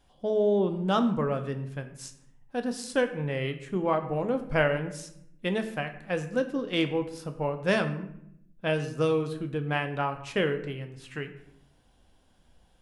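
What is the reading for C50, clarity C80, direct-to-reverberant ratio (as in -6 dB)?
11.5 dB, 13.5 dB, 7.0 dB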